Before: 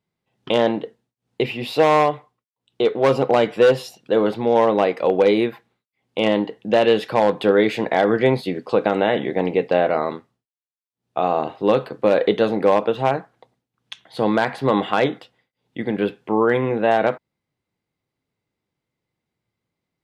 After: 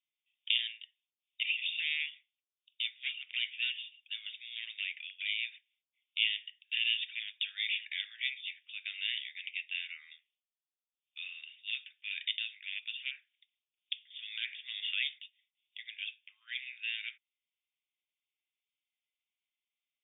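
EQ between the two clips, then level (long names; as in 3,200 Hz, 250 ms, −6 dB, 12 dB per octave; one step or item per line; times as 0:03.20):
Butterworth high-pass 2,400 Hz 48 dB per octave
linear-phase brick-wall low-pass 3,700 Hz
0.0 dB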